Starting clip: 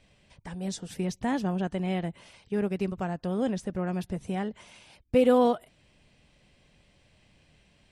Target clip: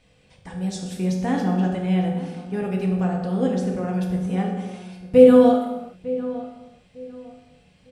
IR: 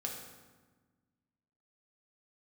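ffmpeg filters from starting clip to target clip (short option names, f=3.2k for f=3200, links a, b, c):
-filter_complex "[0:a]asplit=2[a][b];[b]adelay=902,lowpass=f=2k:p=1,volume=-15.5dB,asplit=2[c][d];[d]adelay=902,lowpass=f=2k:p=1,volume=0.27,asplit=2[e][f];[f]adelay=902,lowpass=f=2k:p=1,volume=0.27[g];[a][c][e][g]amix=inputs=4:normalize=0[h];[1:a]atrim=start_sample=2205,afade=t=out:st=0.45:d=0.01,atrim=end_sample=20286[i];[h][i]afir=irnorm=-1:irlink=0,volume=3.5dB"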